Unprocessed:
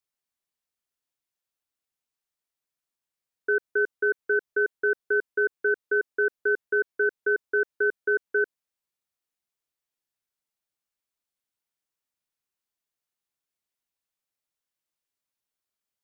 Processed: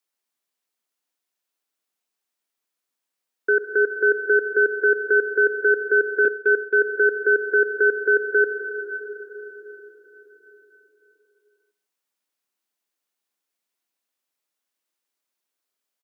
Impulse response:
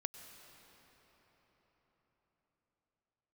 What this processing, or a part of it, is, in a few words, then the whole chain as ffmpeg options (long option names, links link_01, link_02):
cave: -filter_complex "[0:a]aecho=1:1:156:0.133[link_01];[1:a]atrim=start_sample=2205[link_02];[link_01][link_02]afir=irnorm=-1:irlink=0,highpass=frequency=210:width=0.5412,highpass=frequency=210:width=1.3066,asettb=1/sr,asplit=3[link_03][link_04][link_05];[link_03]atrim=end=6.254[link_06];[link_04]atrim=start=6.25:end=6.74,asetpts=PTS-STARTPTS,afade=type=in:duration=0.004:curve=qsin,afade=type=out:start_time=0.486:duration=0.004:curve=qsin,agate=range=-33dB:threshold=-27dB:ratio=3:detection=peak[link_07];[link_05]atrim=start=6.736[link_08];[link_06][link_07]acrossfade=duration=0.004:curve1=hsin:curve2=qsin[link_09];[link_09][link_08]acrossfade=duration=0.004:curve1=qsin:curve2=hsin,volume=7.5dB"